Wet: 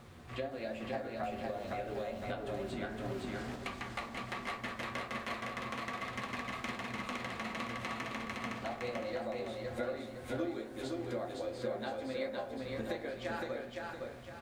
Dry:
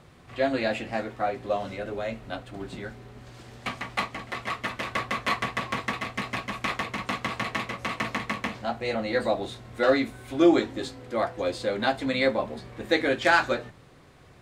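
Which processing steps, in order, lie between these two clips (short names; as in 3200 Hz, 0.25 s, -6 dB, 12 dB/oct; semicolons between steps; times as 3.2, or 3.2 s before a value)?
dynamic EQ 560 Hz, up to +7 dB, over -38 dBFS, Q 1.8; compressor 10:1, threshold -36 dBFS, peak gain reduction 25.5 dB; added noise pink -69 dBFS; flange 1.3 Hz, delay 8 ms, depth 8.3 ms, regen +68%; feedback echo 0.512 s, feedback 39%, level -3 dB; reverb RT60 1.0 s, pre-delay 4 ms, DRR 7 dB; 1.23–3.56 three-band squash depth 100%; gain +2 dB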